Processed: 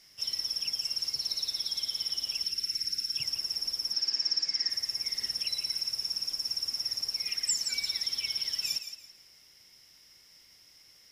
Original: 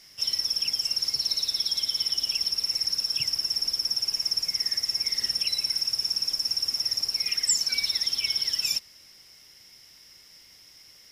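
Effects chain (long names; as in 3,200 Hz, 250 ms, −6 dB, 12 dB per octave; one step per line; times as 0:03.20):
0:02.43–0:03.17: gain on a spectral selection 420–1,300 Hz −29 dB
0:03.93–0:04.70: loudspeaker in its box 170–7,200 Hz, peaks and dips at 290 Hz +7 dB, 1,700 Hz +9 dB, 4,600 Hz +10 dB
feedback echo with a high-pass in the loop 167 ms, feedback 29%, level −10 dB
level −6 dB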